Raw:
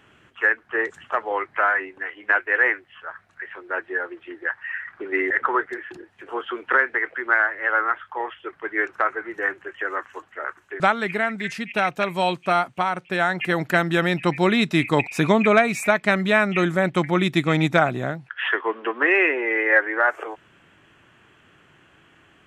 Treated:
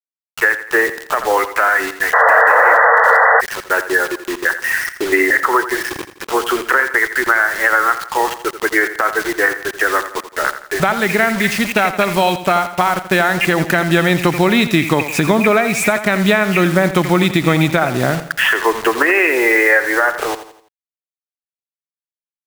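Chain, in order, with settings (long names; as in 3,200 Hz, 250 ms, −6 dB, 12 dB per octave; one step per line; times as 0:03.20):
bit-depth reduction 6 bits, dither none
downward compressor, threshold −22 dBFS, peak gain reduction 11 dB
on a send: repeating echo 84 ms, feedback 42%, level −12.5 dB
on the sum: sound drawn into the spectrogram noise, 0:02.13–0:03.41, 440–2,000 Hz −15 dBFS
boost into a limiter +13.5 dB
level −1 dB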